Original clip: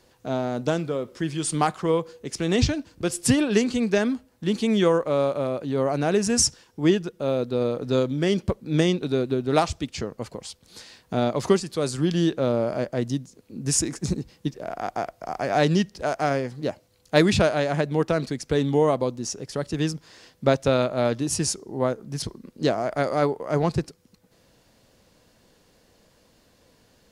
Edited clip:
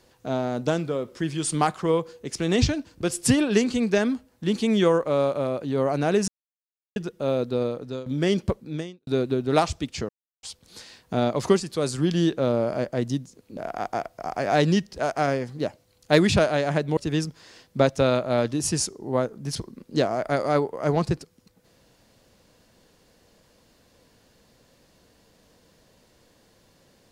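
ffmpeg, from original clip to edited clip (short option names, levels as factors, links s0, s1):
-filter_complex "[0:a]asplit=9[s0][s1][s2][s3][s4][s5][s6][s7][s8];[s0]atrim=end=6.28,asetpts=PTS-STARTPTS,afade=t=out:st=6.276:d=0.004:c=hsin[s9];[s1]atrim=start=6.28:end=6.96,asetpts=PTS-STARTPTS,volume=0[s10];[s2]atrim=start=6.96:end=8.06,asetpts=PTS-STARTPTS,afade=t=in:d=0.004:c=hsin,afade=t=out:st=0.57:d=0.53:silence=0.11885[s11];[s3]atrim=start=8.06:end=9.07,asetpts=PTS-STARTPTS,afade=t=in:d=0.004:c=hsin:silence=0.11885,afade=t=out:st=0.5:d=0.51:c=qua[s12];[s4]atrim=start=9.07:end=10.09,asetpts=PTS-STARTPTS,afade=t=in:d=0.004:c=hsin,afade=t=out:st=1.016:d=0.004:c=hsin[s13];[s5]atrim=start=10.09:end=10.43,asetpts=PTS-STARTPTS,volume=0[s14];[s6]atrim=start=10.43:end=13.572,asetpts=PTS-STARTPTS,afade=t=in:d=0.004:c=hsin[s15];[s7]atrim=start=14.598:end=18.002[s16];[s8]atrim=start=19.638[s17];[s9][s10][s11][s12][s13][s14][s15]concat=n=7:v=0:a=1[s18];[s18][s16]acrossfade=d=0.004:c1=hsin:c2=hsin[s19];[s19][s17]acrossfade=d=0.004:c1=hsin:c2=hsin"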